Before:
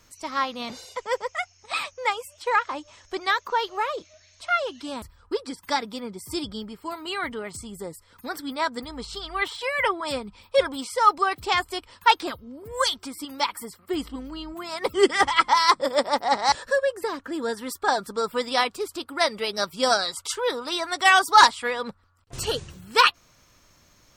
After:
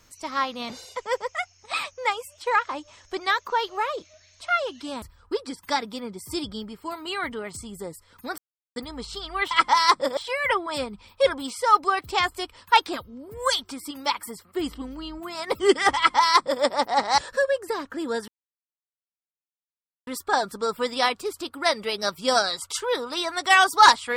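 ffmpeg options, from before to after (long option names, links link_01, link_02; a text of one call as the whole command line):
ffmpeg -i in.wav -filter_complex "[0:a]asplit=6[link_01][link_02][link_03][link_04][link_05][link_06];[link_01]atrim=end=8.38,asetpts=PTS-STARTPTS,afade=type=out:start_time=8.376:duration=0.004:curve=hsin[link_07];[link_02]atrim=start=8.38:end=8.76,asetpts=PTS-STARTPTS,volume=0[link_08];[link_03]atrim=start=8.76:end=9.512,asetpts=PTS-STARTPTS,afade=type=in:duration=0.004:curve=hsin[link_09];[link_04]atrim=start=15.308:end=15.972[link_10];[link_05]atrim=start=9.508:end=17.62,asetpts=PTS-STARTPTS,afade=type=out:start_time=8.108:duration=0.004:curve=hsin,apad=pad_dur=1.79[link_11];[link_06]atrim=start=17.62,asetpts=PTS-STARTPTS,afade=type=in:duration=0.004:curve=hsin[link_12];[link_07][link_08][link_09]concat=n=3:v=0:a=1[link_13];[link_13][link_10]acrossfade=duration=0.004:curve1=hsin:curve2=hsin[link_14];[link_11][link_12]concat=n=2:v=0:a=1[link_15];[link_14][link_15]acrossfade=duration=0.004:curve1=hsin:curve2=hsin" out.wav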